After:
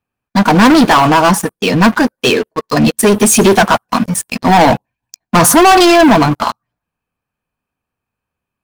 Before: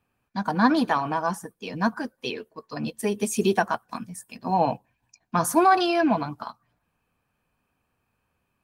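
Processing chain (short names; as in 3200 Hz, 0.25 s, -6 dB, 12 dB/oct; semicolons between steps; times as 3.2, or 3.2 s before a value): sample leveller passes 5; gain +4.5 dB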